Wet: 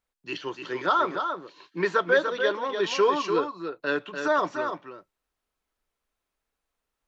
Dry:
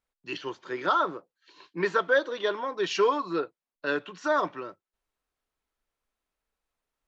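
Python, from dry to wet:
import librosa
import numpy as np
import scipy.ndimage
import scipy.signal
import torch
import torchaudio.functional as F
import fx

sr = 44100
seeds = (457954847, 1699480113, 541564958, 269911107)

y = x + 10.0 ** (-6.5 / 20.0) * np.pad(x, (int(294 * sr / 1000.0), 0))[:len(x)]
y = F.gain(torch.from_numpy(y), 1.5).numpy()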